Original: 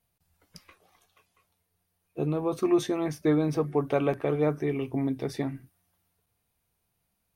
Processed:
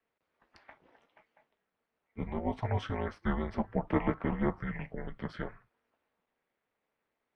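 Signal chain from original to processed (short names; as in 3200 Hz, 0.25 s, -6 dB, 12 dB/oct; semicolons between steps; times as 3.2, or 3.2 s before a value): ring modulator 110 Hz; Butterworth band-pass 1300 Hz, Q 0.67; frequency shift -360 Hz; gain +5.5 dB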